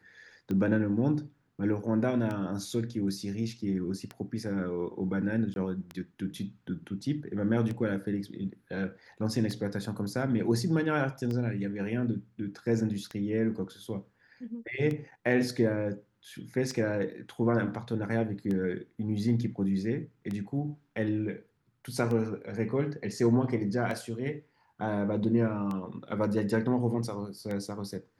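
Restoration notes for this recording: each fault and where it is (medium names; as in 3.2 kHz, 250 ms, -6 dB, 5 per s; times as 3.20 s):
tick 33 1/3 rpm -23 dBFS
5.54–5.56 s: dropout 21 ms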